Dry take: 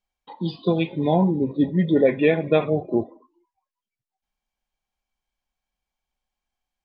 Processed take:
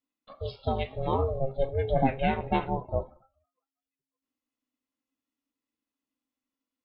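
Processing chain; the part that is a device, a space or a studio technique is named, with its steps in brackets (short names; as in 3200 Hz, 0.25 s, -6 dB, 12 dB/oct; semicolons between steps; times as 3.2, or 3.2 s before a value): alien voice (ring modulator 270 Hz; flange 0.53 Hz, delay 6.9 ms, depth 1.1 ms, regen +79%)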